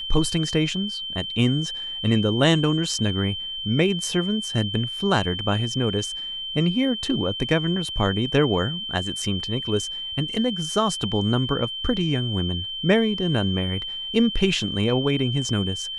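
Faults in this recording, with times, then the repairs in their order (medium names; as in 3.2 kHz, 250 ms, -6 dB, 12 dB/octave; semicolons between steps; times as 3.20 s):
whine 3.1 kHz -29 dBFS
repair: band-stop 3.1 kHz, Q 30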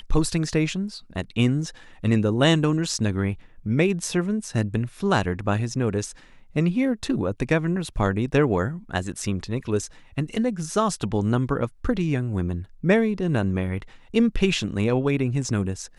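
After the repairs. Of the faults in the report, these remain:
nothing left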